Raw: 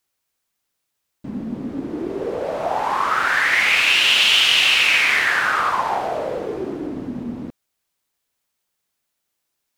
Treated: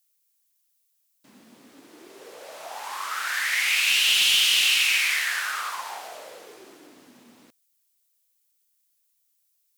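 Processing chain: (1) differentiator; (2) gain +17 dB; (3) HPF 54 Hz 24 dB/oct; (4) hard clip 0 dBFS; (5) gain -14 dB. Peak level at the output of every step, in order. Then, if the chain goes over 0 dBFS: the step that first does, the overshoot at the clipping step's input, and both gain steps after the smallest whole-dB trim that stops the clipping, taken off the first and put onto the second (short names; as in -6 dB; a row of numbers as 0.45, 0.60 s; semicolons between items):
-9.5, +7.5, +7.5, 0.0, -14.0 dBFS; step 2, 7.5 dB; step 2 +9 dB, step 5 -6 dB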